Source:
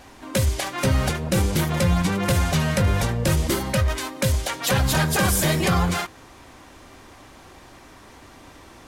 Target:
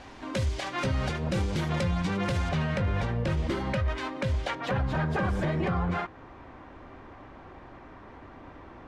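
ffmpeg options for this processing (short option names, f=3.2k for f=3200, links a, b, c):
-af "asetnsamples=n=441:p=0,asendcmd='2.49 lowpass f 2900;4.55 lowpass f 1700',lowpass=4.9k,alimiter=limit=-20dB:level=0:latency=1:release=260"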